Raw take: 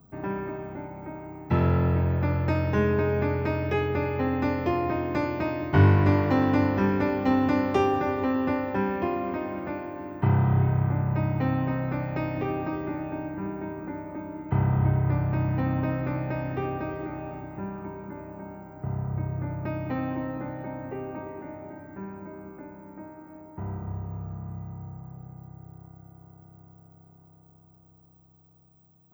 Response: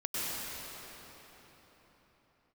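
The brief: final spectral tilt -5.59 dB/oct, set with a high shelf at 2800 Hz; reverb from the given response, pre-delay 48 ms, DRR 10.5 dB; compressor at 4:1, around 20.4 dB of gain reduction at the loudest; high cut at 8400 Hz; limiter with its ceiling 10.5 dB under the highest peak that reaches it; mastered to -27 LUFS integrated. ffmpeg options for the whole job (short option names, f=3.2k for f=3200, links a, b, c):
-filter_complex "[0:a]lowpass=8.4k,highshelf=f=2.8k:g=8.5,acompressor=threshold=-39dB:ratio=4,alimiter=level_in=11dB:limit=-24dB:level=0:latency=1,volume=-11dB,asplit=2[a][b];[1:a]atrim=start_sample=2205,adelay=48[c];[b][c]afir=irnorm=-1:irlink=0,volume=-17.5dB[d];[a][d]amix=inputs=2:normalize=0,volume=16dB"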